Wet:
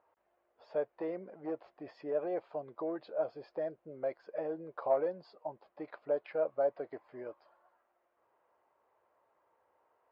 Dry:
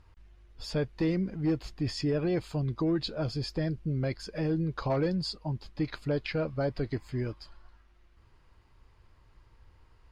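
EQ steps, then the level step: ladder band-pass 710 Hz, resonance 50%; air absorption 65 m; +8.5 dB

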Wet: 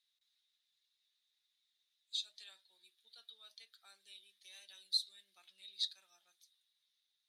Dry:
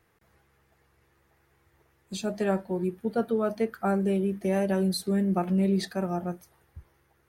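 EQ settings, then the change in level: ladder band-pass 3900 Hz, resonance 85%; high shelf 5900 Hz +10 dB; -1.5 dB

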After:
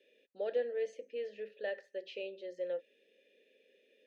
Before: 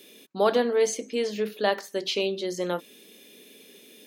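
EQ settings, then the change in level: vowel filter e; high shelf 11000 Hz -8 dB; -4.5 dB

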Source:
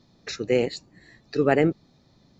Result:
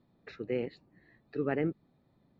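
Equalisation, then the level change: low shelf 110 Hz -6 dB; dynamic EQ 680 Hz, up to -6 dB, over -33 dBFS, Q 1.2; air absorption 460 m; -7.0 dB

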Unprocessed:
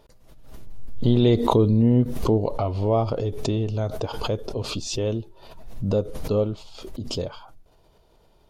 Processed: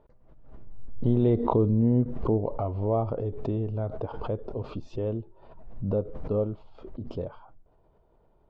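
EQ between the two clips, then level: LPF 1300 Hz 12 dB/oct; -4.5 dB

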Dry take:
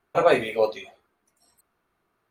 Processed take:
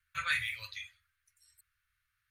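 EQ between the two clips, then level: elliptic band-stop 100–1600 Hz, stop band 40 dB; -1.5 dB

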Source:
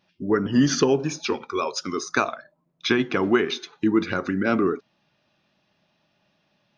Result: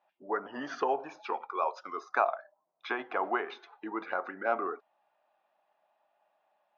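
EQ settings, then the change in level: ladder band-pass 860 Hz, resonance 55%; +7.0 dB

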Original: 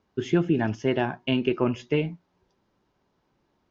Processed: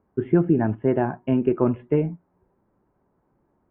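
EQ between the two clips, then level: Gaussian blur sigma 5.5 samples; +4.0 dB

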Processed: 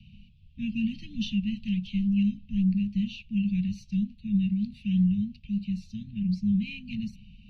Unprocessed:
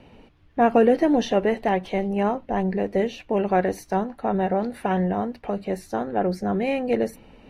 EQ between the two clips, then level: Chebyshev band-stop 210–2600 Hz, order 5; air absorption 200 m; +3.0 dB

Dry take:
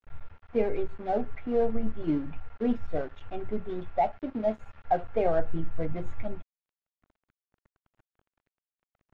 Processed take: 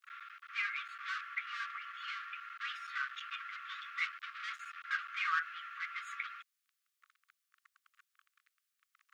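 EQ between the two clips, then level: brick-wall FIR high-pass 1100 Hz; +11.0 dB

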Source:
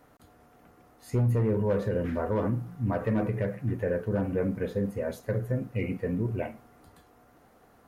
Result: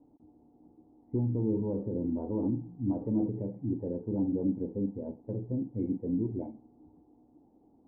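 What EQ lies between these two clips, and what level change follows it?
vocal tract filter u; bell 3500 Hz -12 dB 2 oct; +7.0 dB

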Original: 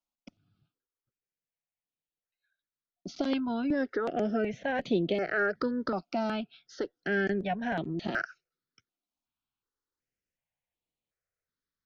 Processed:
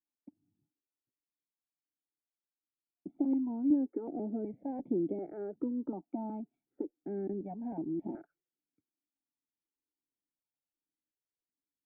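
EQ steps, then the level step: vocal tract filter u; low shelf 140 Hz -5.5 dB; +4.5 dB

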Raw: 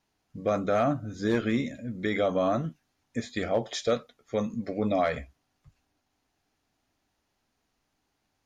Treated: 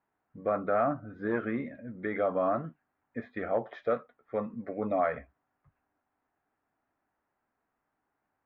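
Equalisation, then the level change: LPF 1600 Hz 24 dB/oct; tilt +3 dB/oct; 0.0 dB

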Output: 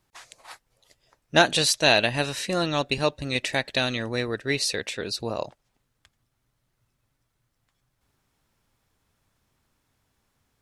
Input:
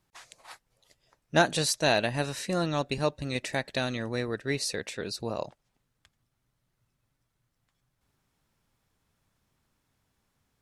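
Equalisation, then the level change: dynamic EQ 3100 Hz, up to +7 dB, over -45 dBFS, Q 1.3; bell 170 Hz -3.5 dB 0.64 oct; +3.5 dB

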